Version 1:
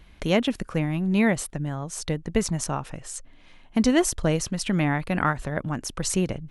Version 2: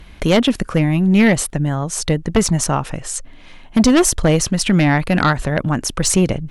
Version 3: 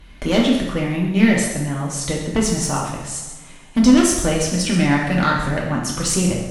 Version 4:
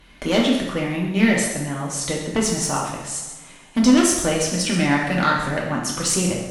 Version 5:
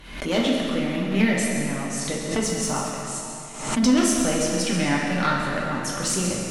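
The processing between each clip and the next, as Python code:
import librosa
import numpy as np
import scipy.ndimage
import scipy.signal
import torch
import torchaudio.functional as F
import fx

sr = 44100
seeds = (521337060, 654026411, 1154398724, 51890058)

y1 = fx.fold_sine(x, sr, drive_db=7, ceiling_db=-7.0)
y2 = y1 + 10.0 ** (-11.0 / 20.0) * np.pad(y1, (int(131 * sr / 1000.0), 0))[:len(y1)]
y2 = fx.rev_double_slope(y2, sr, seeds[0], early_s=0.72, late_s=2.3, knee_db=-18, drr_db=-2.5)
y2 = y2 * librosa.db_to_amplitude(-7.0)
y3 = fx.low_shelf(y2, sr, hz=140.0, db=-10.5)
y4 = fx.rev_freeverb(y3, sr, rt60_s=2.6, hf_ratio=0.85, predelay_ms=105, drr_db=4.0)
y4 = fx.pre_swell(y4, sr, db_per_s=76.0)
y4 = y4 * librosa.db_to_amplitude(-4.5)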